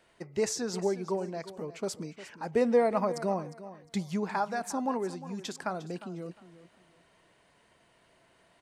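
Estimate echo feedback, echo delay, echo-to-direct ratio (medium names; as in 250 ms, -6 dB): 24%, 355 ms, -14.5 dB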